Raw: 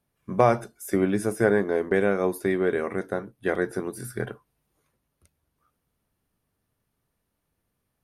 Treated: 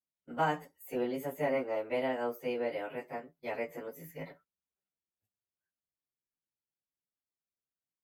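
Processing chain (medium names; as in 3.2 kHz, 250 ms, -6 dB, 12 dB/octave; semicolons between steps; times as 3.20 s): frequency-domain pitch shifter +4.5 st; gate -52 dBFS, range -15 dB; bass shelf 140 Hz -6.5 dB; trim -8 dB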